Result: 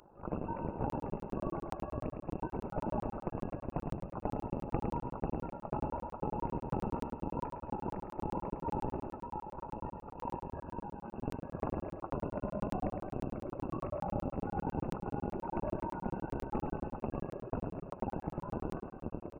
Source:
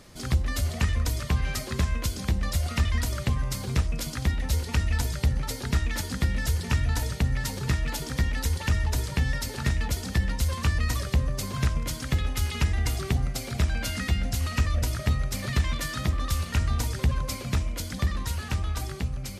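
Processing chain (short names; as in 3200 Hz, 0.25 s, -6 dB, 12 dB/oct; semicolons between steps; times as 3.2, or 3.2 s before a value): rattling part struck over -25 dBFS, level -23 dBFS; inverse Chebyshev high-pass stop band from 810 Hz, stop band 50 dB; 9.07–11.41 negative-ratio compressor -45 dBFS, ratio -1; AM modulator 51 Hz, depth 65%; flange 0.87 Hz, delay 4.7 ms, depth 4.2 ms, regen +37%; soft clip -27 dBFS, distortion -24 dB; feedback echo 0.109 s, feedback 50%, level -6 dB; inverted band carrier 2700 Hz; crackling interface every 0.10 s, samples 1024, zero, from 0.9; gain +12.5 dB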